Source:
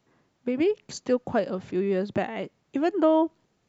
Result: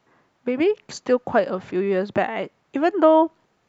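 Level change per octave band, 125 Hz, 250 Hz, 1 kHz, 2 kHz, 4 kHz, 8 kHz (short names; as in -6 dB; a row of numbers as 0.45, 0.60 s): +1.0 dB, +2.5 dB, +8.0 dB, +7.5 dB, +4.0 dB, n/a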